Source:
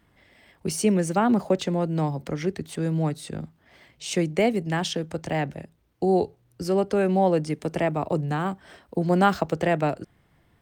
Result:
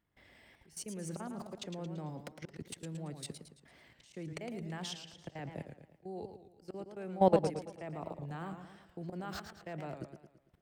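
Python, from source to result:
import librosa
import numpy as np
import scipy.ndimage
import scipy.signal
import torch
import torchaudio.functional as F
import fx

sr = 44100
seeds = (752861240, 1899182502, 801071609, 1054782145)

y = fx.auto_swell(x, sr, attack_ms=324.0)
y = fx.level_steps(y, sr, step_db=20)
y = fx.echo_warbled(y, sr, ms=112, feedback_pct=46, rate_hz=2.8, cents=145, wet_db=-8.0)
y = y * 10.0 ** (-2.0 / 20.0)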